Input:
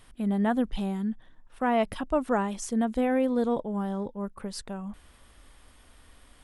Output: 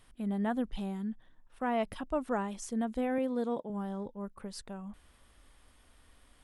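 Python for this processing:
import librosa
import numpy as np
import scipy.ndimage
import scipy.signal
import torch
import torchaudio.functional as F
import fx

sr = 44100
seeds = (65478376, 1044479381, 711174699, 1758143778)

y = fx.highpass(x, sr, hz=150.0, slope=12, at=(3.18, 3.7))
y = y * librosa.db_to_amplitude(-6.5)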